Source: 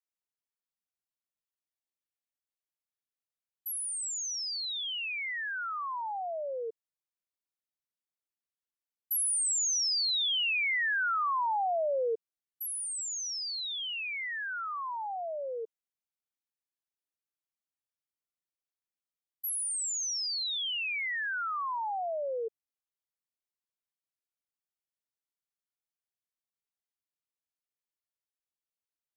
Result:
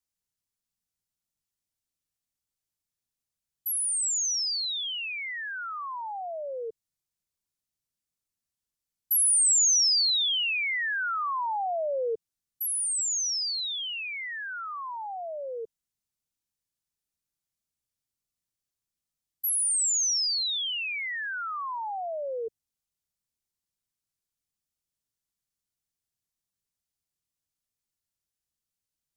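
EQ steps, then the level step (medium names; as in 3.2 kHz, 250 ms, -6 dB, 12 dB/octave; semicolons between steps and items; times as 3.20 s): tone controls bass +14 dB, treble +11 dB; treble shelf 9.7 kHz -7 dB; 0.0 dB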